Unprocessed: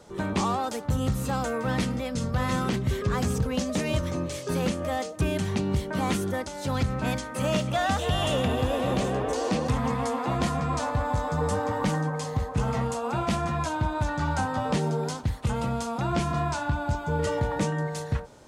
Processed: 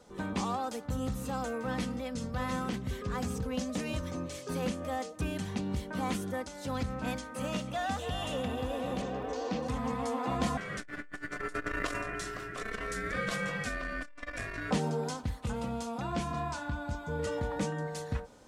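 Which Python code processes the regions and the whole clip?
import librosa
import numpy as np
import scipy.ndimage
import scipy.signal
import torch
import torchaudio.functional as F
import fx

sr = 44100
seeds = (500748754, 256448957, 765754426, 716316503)

y = fx.lowpass(x, sr, hz=6200.0, slope=24, at=(9.01, 9.61), fade=0.02)
y = fx.dmg_crackle(y, sr, seeds[0], per_s=200.0, level_db=-48.0, at=(9.01, 9.61), fade=0.02)
y = fx.chain(y, sr, fx.highpass(hz=270.0, slope=24),
    fx.ring_mod(carrier_hz=880.0),
    fx.transformer_sat(knee_hz=400.0), at=(10.57, 14.71))
y = fx.rider(y, sr, range_db=10, speed_s=2.0)
y = y + 0.38 * np.pad(y, (int(4.0 * sr / 1000.0), 0))[:len(y)]
y = F.gain(torch.from_numpy(y), -7.5).numpy()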